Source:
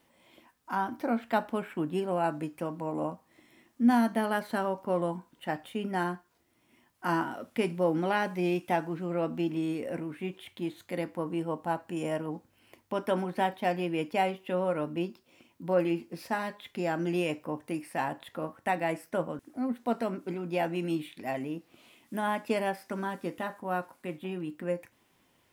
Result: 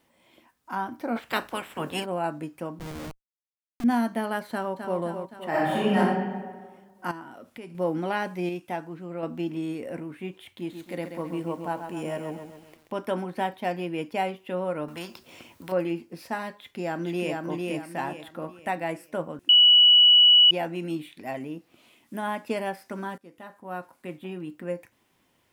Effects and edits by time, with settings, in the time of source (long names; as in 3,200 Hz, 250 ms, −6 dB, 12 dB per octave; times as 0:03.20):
0:01.15–0:02.04: ceiling on every frequency bin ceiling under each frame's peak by 22 dB
0:02.79–0:03.84: comparator with hysteresis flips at −34 dBFS
0:04.50–0:04.99: delay throw 260 ms, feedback 60%, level −7 dB
0:05.49–0:05.97: thrown reverb, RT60 1.5 s, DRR −11 dB
0:07.11–0:07.75: downward compressor 2.5 to 1, threshold −43 dBFS
0:08.49–0:09.23: clip gain −4 dB
0:10.47–0:13.05: feedback echo at a low word length 133 ms, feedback 55%, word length 9 bits, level −7.5 dB
0:14.88–0:15.72: every bin compressed towards the loudest bin 2 to 1
0:16.50–0:17.38: delay throw 450 ms, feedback 35%, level −2.5 dB
0:19.49–0:20.51: beep over 2,940 Hz −12 dBFS
0:23.18–0:24.07: fade in, from −20.5 dB